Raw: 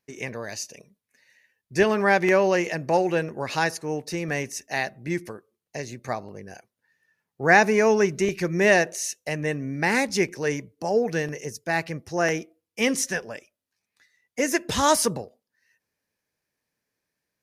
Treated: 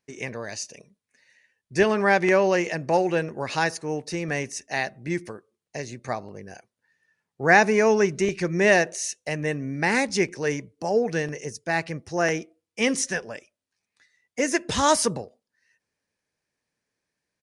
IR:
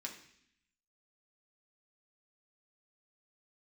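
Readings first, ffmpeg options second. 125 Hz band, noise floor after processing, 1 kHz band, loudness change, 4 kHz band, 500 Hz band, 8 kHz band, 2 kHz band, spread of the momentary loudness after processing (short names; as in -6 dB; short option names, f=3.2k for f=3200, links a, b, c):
0.0 dB, under -85 dBFS, 0.0 dB, 0.0 dB, 0.0 dB, 0.0 dB, 0.0 dB, 0.0 dB, 16 LU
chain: -af "aresample=22050,aresample=44100"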